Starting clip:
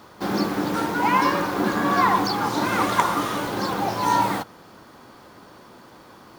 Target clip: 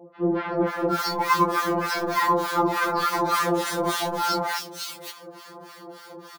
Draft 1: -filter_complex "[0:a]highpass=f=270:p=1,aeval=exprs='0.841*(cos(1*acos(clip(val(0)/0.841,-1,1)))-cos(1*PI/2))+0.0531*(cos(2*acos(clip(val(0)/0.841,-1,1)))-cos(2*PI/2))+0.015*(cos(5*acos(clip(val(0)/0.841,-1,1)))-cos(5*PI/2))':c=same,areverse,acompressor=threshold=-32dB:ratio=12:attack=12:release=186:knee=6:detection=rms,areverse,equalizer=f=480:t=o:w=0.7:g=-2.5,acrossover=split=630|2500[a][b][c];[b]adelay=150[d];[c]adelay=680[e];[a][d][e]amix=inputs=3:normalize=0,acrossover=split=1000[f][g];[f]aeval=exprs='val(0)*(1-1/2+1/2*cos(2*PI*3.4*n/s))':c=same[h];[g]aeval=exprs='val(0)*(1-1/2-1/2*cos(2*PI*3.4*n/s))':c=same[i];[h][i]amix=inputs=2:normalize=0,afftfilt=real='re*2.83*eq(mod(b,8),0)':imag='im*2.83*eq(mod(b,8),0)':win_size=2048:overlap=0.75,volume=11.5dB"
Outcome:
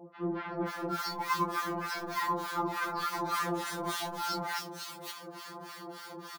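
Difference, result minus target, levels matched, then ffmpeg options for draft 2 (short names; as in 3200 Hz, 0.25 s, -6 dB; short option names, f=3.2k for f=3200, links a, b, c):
compressor: peak gain reduction +9.5 dB; 500 Hz band -2.0 dB
-filter_complex "[0:a]highpass=f=270:p=1,aeval=exprs='0.841*(cos(1*acos(clip(val(0)/0.841,-1,1)))-cos(1*PI/2))+0.0531*(cos(2*acos(clip(val(0)/0.841,-1,1)))-cos(2*PI/2))+0.015*(cos(5*acos(clip(val(0)/0.841,-1,1)))-cos(5*PI/2))':c=same,areverse,acompressor=threshold=-21.5dB:ratio=12:attack=12:release=186:knee=6:detection=rms,areverse,equalizer=f=480:t=o:w=0.7:g=5,acrossover=split=630|2500[a][b][c];[b]adelay=150[d];[c]adelay=680[e];[a][d][e]amix=inputs=3:normalize=0,acrossover=split=1000[f][g];[f]aeval=exprs='val(0)*(1-1/2+1/2*cos(2*PI*3.4*n/s))':c=same[h];[g]aeval=exprs='val(0)*(1-1/2-1/2*cos(2*PI*3.4*n/s))':c=same[i];[h][i]amix=inputs=2:normalize=0,afftfilt=real='re*2.83*eq(mod(b,8),0)':imag='im*2.83*eq(mod(b,8),0)':win_size=2048:overlap=0.75,volume=11.5dB"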